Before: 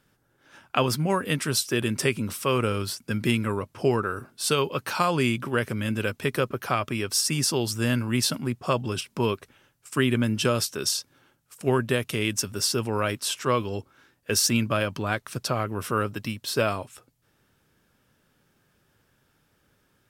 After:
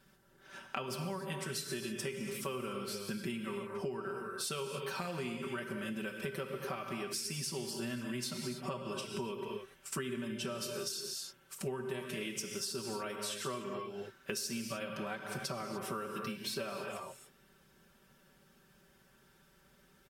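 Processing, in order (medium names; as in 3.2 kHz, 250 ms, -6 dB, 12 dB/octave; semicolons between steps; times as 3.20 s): comb 5.2 ms, depth 99%; gated-style reverb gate 320 ms flat, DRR 4.5 dB; compression 10:1, threshold -34 dBFS, peak gain reduction 21.5 dB; trim -2.5 dB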